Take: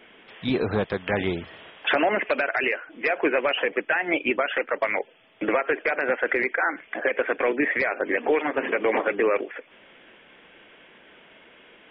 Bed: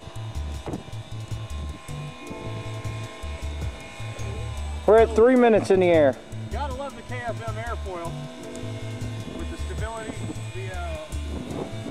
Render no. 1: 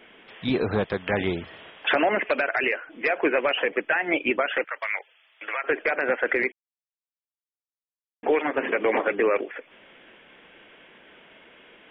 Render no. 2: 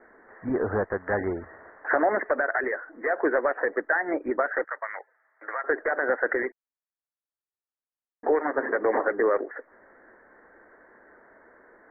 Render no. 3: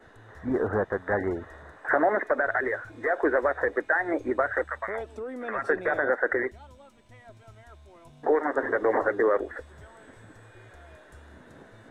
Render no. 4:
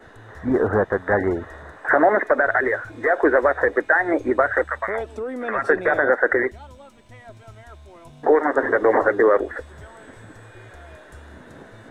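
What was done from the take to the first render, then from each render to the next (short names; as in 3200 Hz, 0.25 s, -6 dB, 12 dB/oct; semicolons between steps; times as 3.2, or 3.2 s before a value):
4.64–5.64 HPF 1300 Hz; 6.52–8.23 mute
steep low-pass 1900 Hz 96 dB/oct; bell 160 Hz -12 dB 0.8 oct
add bed -20 dB
gain +7 dB; limiter -2 dBFS, peak gain reduction 1.5 dB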